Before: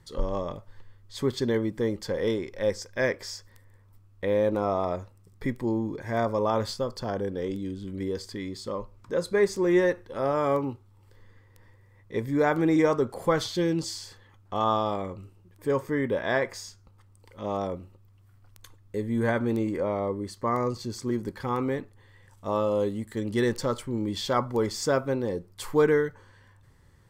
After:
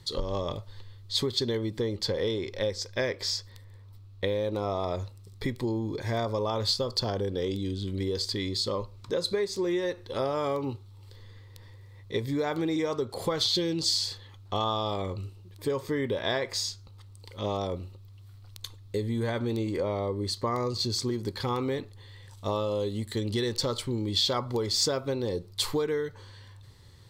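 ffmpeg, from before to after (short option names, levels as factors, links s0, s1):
-filter_complex "[0:a]asettb=1/sr,asplit=3[s0][s1][s2];[s0]atrim=end=1.784[s3];[s1]atrim=start=1.78:end=4.24,asetpts=PTS-STARTPTS,afade=t=in:d=0.004:c=qsin,afade=t=out:st=2.456:d=0.004:c=qsin,equalizer=f=12000:w=0.36:g=-5[s4];[s2]atrim=start=4.236[s5];[s3][s4]acrossfade=d=0.004:c1=hsin:c2=qsin[s6];[s6][s5]acrossfade=d=0.004:c1=qsin:c2=hsin,equalizer=f=100:t=o:w=0.67:g=9,equalizer=f=400:t=o:w=0.67:g=4,equalizer=f=1600:t=o:w=0.67:g=-5,equalizer=f=4000:t=o:w=0.67:g=12,acompressor=threshold=0.0501:ratio=12,tiltshelf=f=810:g=-3,volume=1.33"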